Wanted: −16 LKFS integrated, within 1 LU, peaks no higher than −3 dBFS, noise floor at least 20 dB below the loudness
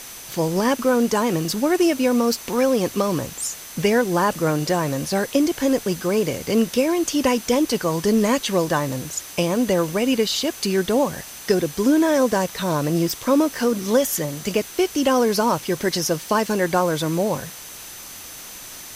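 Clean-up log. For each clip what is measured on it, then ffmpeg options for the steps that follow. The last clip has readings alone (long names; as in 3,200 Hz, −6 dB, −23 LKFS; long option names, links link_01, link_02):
interfering tone 6,100 Hz; level of the tone −43 dBFS; background noise floor −38 dBFS; target noise floor −41 dBFS; integrated loudness −21.0 LKFS; sample peak −5.5 dBFS; target loudness −16.0 LKFS
→ -af "bandreject=frequency=6100:width=30"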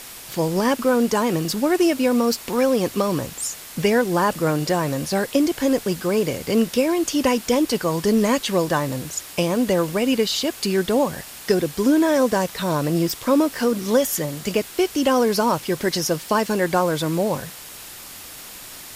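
interfering tone none found; background noise floor −39 dBFS; target noise floor −41 dBFS
→ -af "afftdn=noise_reduction=6:noise_floor=-39"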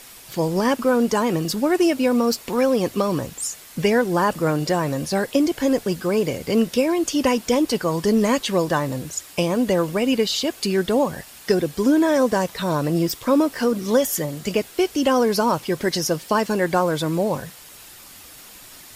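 background noise floor −44 dBFS; integrated loudness −21.0 LKFS; sample peak −6.0 dBFS; target loudness −16.0 LKFS
→ -af "volume=5dB,alimiter=limit=-3dB:level=0:latency=1"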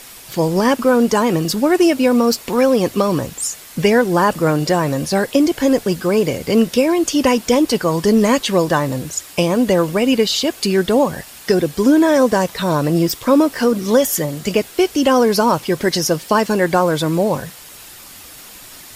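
integrated loudness −16.0 LKFS; sample peak −3.0 dBFS; background noise floor −39 dBFS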